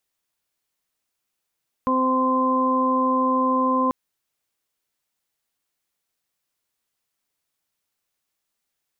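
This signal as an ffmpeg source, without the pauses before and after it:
-f lavfi -i "aevalsrc='0.0794*sin(2*PI*259*t)+0.0531*sin(2*PI*518*t)+0.0126*sin(2*PI*777*t)+0.1*sin(2*PI*1036*t)':d=2.04:s=44100"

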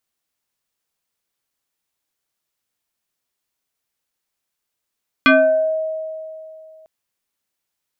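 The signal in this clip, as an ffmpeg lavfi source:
-f lavfi -i "aevalsrc='0.447*pow(10,-3*t/2.65)*sin(2*PI*634*t+2.8*pow(10,-3*t/0.58)*sin(2*PI*1.42*634*t))':d=1.6:s=44100"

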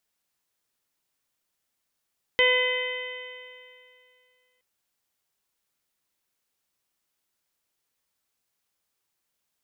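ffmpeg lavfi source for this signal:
-f lavfi -i "aevalsrc='0.0841*pow(10,-3*t/2.41)*sin(2*PI*501.33*t)+0.0299*pow(10,-3*t/2.41)*sin(2*PI*1004.6*t)+0.015*pow(10,-3*t/2.41)*sin(2*PI*1511.77*t)+0.119*pow(10,-3*t/2.41)*sin(2*PI*2024.73*t)+0.0335*pow(10,-3*t/2.41)*sin(2*PI*2545.38*t)+0.0708*pow(10,-3*t/2.41)*sin(2*PI*3075.54*t)+0.0106*pow(10,-3*t/2.41)*sin(2*PI*3616.97*t)':d=2.22:s=44100"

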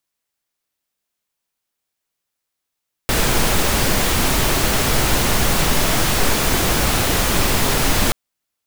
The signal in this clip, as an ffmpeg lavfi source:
-f lavfi -i "anoisesrc=c=pink:a=0.767:d=5.03:r=44100:seed=1"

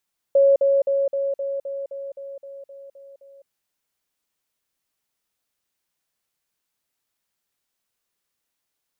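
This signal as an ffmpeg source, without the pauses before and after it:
-f lavfi -i "aevalsrc='pow(10,(-11.5-3*floor(t/0.26))/20)*sin(2*PI*553*t)*clip(min(mod(t,0.26),0.21-mod(t,0.26))/0.005,0,1)':d=3.12:s=44100"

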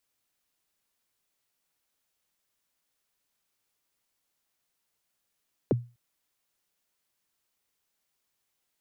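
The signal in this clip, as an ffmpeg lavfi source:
-f lavfi -i "aevalsrc='0.141*pow(10,-3*t/0.3)*sin(2*PI*(570*0.021/log(120/570)*(exp(log(120/570)*min(t,0.021)/0.021)-1)+120*max(t-0.021,0)))':d=0.25:s=44100"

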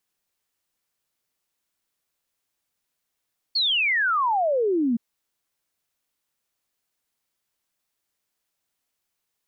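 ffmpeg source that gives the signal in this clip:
-f lavfi -i "aevalsrc='0.112*clip(min(t,1.42-t)/0.01,0,1)*sin(2*PI*4500*1.42/log(220/4500)*(exp(log(220/4500)*t/1.42)-1))':d=1.42:s=44100"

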